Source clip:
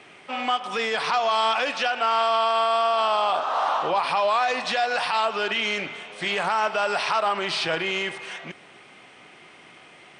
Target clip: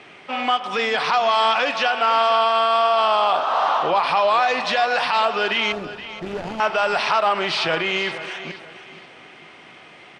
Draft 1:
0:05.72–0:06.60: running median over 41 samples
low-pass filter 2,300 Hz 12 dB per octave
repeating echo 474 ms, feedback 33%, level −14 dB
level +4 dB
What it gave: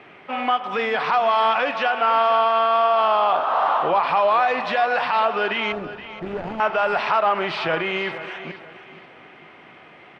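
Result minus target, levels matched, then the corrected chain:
8,000 Hz band −13.5 dB
0:05.72–0:06.60: running median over 41 samples
low-pass filter 5,800 Hz 12 dB per octave
repeating echo 474 ms, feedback 33%, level −14 dB
level +4 dB

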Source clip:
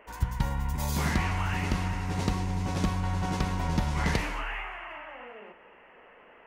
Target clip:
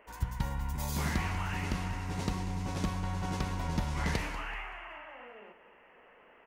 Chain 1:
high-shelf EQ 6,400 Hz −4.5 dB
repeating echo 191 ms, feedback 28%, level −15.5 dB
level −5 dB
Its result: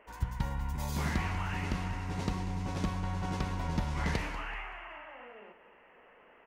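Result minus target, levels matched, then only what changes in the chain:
8,000 Hz band −3.5 dB
change: high-shelf EQ 6,400 Hz +2.5 dB

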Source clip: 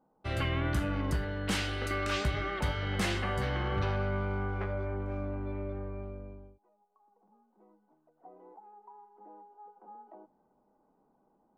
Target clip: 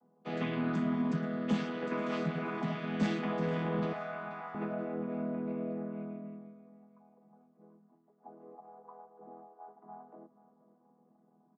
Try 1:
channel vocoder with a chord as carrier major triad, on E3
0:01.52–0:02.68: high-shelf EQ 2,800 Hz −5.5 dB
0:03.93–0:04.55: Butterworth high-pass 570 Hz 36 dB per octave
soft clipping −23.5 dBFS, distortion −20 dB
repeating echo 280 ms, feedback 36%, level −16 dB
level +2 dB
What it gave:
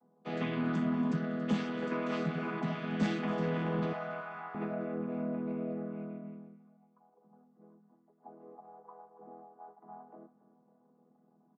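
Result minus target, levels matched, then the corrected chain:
echo 201 ms early
channel vocoder with a chord as carrier major triad, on E3
0:01.52–0:02.68: high-shelf EQ 2,800 Hz −5.5 dB
0:03.93–0:04.55: Butterworth high-pass 570 Hz 36 dB per octave
soft clipping −23.5 dBFS, distortion −20 dB
repeating echo 481 ms, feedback 36%, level −16 dB
level +2 dB

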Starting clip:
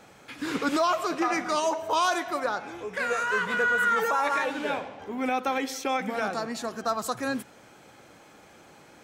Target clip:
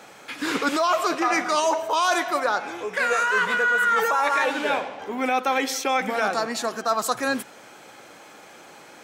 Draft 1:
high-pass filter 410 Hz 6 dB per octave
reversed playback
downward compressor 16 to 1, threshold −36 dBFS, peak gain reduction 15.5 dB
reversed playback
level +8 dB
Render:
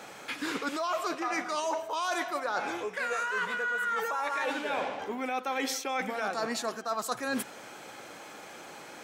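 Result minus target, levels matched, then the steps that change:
downward compressor: peak gain reduction +10.5 dB
change: downward compressor 16 to 1, threshold −25 dBFS, peak gain reduction 5.5 dB

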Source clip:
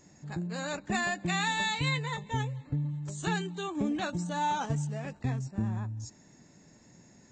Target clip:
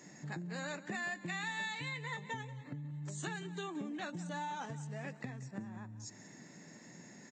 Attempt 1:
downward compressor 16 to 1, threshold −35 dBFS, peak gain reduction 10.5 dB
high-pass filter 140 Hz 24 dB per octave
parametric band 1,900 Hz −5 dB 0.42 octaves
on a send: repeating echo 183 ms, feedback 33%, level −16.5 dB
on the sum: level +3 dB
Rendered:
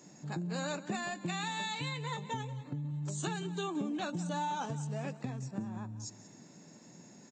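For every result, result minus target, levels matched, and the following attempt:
downward compressor: peak gain reduction −6 dB; 2,000 Hz band −6.0 dB
downward compressor 16 to 1, threshold −41.5 dBFS, peak gain reduction 16.5 dB
high-pass filter 140 Hz 24 dB per octave
parametric band 1,900 Hz −5 dB 0.42 octaves
on a send: repeating echo 183 ms, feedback 33%, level −16.5 dB
on the sum: level +3 dB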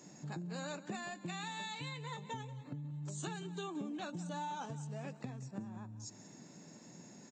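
2,000 Hz band −6.0 dB
downward compressor 16 to 1, threshold −41.5 dBFS, peak gain reduction 16.5 dB
high-pass filter 140 Hz 24 dB per octave
parametric band 1,900 Hz +7 dB 0.42 octaves
on a send: repeating echo 183 ms, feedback 33%, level −16.5 dB
on the sum: level +3 dB

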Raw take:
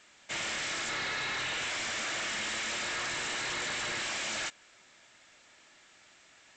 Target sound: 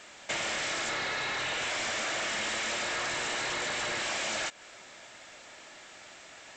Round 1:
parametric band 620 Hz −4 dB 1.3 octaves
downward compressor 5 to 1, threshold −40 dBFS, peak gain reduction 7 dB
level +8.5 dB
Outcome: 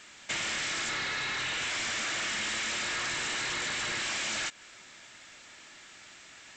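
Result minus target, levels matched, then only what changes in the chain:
500 Hz band −7.0 dB
change: parametric band 620 Hz +5.5 dB 1.3 octaves

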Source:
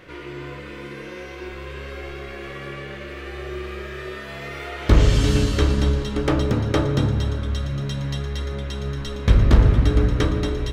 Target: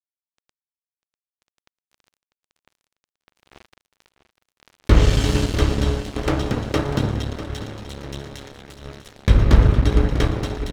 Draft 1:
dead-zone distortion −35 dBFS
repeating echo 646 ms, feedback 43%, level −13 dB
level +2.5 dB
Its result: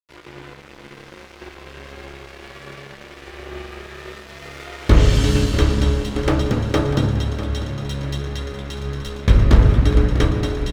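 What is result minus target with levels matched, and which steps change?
dead-zone distortion: distortion −9 dB
change: dead-zone distortion −24 dBFS

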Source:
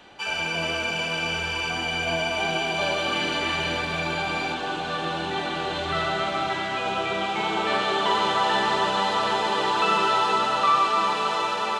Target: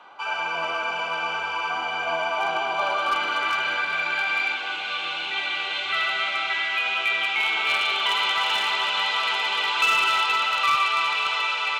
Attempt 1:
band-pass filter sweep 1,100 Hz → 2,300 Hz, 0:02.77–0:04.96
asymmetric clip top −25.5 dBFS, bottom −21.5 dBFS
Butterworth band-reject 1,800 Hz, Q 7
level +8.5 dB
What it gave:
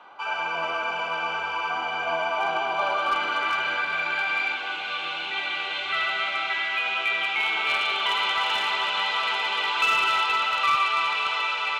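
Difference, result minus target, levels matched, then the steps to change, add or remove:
8,000 Hz band −3.0 dB
add after Butterworth band-reject: high-shelf EQ 3,800 Hz +6 dB

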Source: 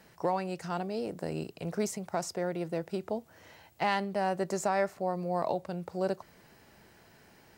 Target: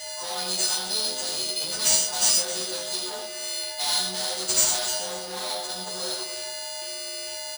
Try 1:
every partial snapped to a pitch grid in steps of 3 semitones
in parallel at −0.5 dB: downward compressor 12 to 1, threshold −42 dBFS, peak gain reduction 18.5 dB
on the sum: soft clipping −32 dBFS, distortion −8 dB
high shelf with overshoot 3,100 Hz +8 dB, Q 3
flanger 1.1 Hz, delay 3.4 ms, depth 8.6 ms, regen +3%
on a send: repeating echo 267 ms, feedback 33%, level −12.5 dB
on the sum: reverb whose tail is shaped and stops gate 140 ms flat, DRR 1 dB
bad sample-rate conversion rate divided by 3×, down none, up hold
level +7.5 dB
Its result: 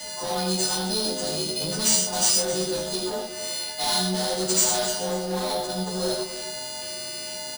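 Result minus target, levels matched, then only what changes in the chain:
downward compressor: peak gain reduction +9 dB; 1,000 Hz band +4.0 dB
change: downward compressor 12 to 1, threshold −32 dBFS, peak gain reduction 9.5 dB
add after soft clipping: high-pass filter 1,300 Hz 6 dB per octave

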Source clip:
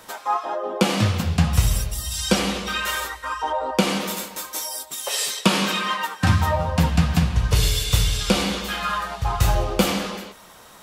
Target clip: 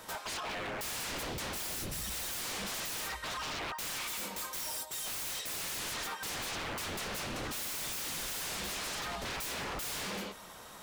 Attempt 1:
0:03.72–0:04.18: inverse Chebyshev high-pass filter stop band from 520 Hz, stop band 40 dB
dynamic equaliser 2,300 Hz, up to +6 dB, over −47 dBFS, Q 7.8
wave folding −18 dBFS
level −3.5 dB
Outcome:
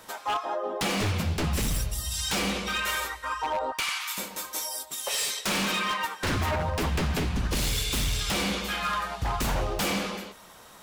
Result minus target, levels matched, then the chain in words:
wave folding: distortion −22 dB
0:03.72–0:04.18: inverse Chebyshev high-pass filter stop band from 520 Hz, stop band 40 dB
dynamic equaliser 2,300 Hz, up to +6 dB, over −47 dBFS, Q 7.8
wave folding −30 dBFS
level −3.5 dB

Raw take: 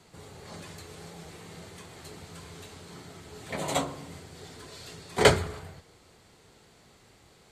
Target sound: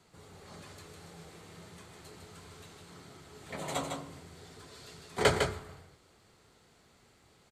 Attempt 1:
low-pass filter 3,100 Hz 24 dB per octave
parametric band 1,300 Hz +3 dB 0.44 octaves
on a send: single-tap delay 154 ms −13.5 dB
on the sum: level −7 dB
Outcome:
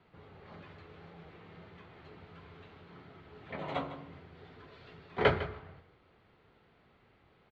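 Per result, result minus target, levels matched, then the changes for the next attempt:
echo-to-direct −8.5 dB; 4,000 Hz band −4.5 dB
change: single-tap delay 154 ms −5 dB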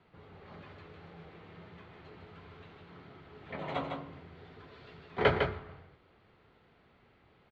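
4,000 Hz band −4.5 dB
remove: low-pass filter 3,100 Hz 24 dB per octave

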